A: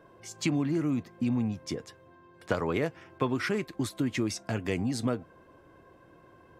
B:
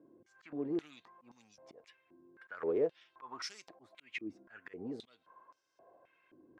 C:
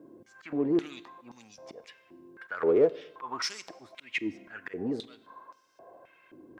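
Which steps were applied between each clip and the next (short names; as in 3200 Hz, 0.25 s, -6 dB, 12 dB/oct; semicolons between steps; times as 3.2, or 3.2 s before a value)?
auto swell 0.219 s; added harmonics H 6 -21 dB, 8 -20 dB, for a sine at -15.5 dBFS; stepped band-pass 3.8 Hz 290–5600 Hz; gain +2.5 dB
in parallel at -11.5 dB: soft clip -37.5 dBFS, distortion -6 dB; on the sum: reverb RT60 1.0 s, pre-delay 32 ms, DRR 18 dB; gain +8.5 dB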